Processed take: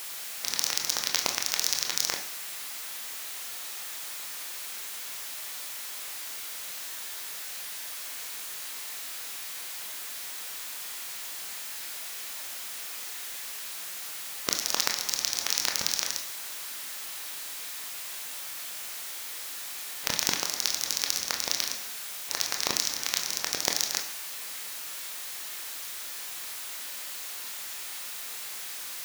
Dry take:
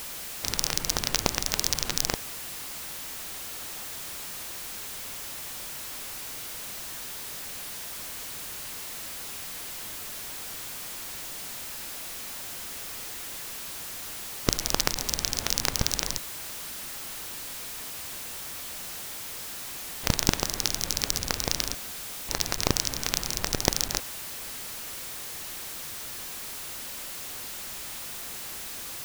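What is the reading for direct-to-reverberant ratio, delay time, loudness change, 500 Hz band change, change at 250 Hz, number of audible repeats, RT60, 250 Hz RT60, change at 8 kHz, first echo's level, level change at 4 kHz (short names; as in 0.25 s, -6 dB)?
3.0 dB, none, 0.0 dB, -6.5 dB, -10.5 dB, none, 0.95 s, 0.90 s, 0.0 dB, none, +0.5 dB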